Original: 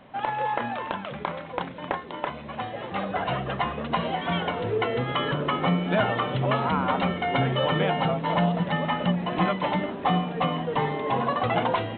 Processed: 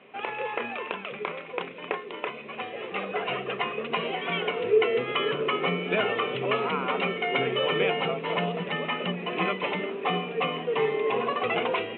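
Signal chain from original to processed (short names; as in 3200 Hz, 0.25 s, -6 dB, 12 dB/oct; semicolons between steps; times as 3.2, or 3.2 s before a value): speaker cabinet 280–3300 Hz, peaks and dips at 290 Hz -6 dB, 420 Hz +10 dB, 600 Hz -6 dB, 870 Hz -9 dB, 1600 Hz -5 dB, 2500 Hz +10 dB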